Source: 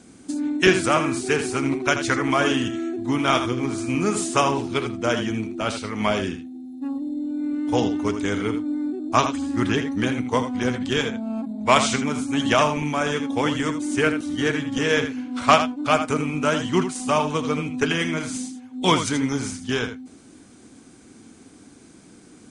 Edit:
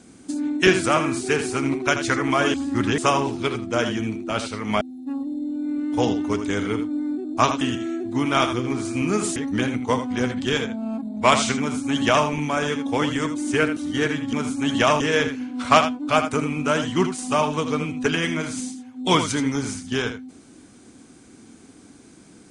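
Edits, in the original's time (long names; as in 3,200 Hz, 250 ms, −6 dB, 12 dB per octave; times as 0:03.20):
0:02.54–0:04.29: swap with 0:09.36–0:09.80
0:06.12–0:06.56: remove
0:12.04–0:12.71: duplicate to 0:14.77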